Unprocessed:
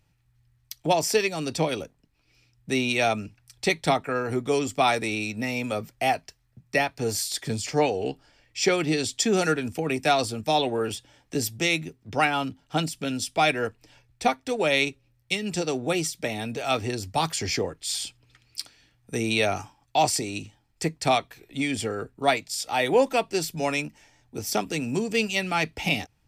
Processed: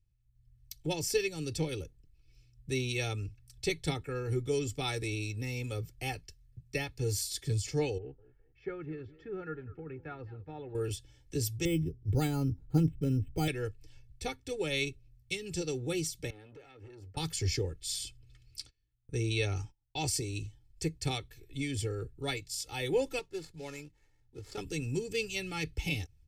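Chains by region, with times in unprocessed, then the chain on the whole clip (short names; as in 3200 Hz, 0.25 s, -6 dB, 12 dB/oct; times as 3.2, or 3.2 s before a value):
7.98–10.75 ladder low-pass 1700 Hz, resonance 50% + warbling echo 0.205 s, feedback 31%, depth 189 cents, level -18.5 dB
11.65–13.48 careless resampling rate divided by 8×, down filtered, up hold + tilt shelf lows +9 dB, about 890 Hz
16.3–17.17 three-band isolator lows -13 dB, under 200 Hz, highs -19 dB, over 2200 Hz + compressor 10:1, threshold -36 dBFS + core saturation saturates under 1000 Hz
18.59–20.03 gate -53 dBFS, range -19 dB + LPF 7800 Hz + mismatched tape noise reduction decoder only
23.19–24.58 median filter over 15 samples + LPF 9800 Hz + low shelf 360 Hz -12 dB
whole clip: passive tone stack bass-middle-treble 10-0-1; comb 2.3 ms, depth 80%; AGC gain up to 12 dB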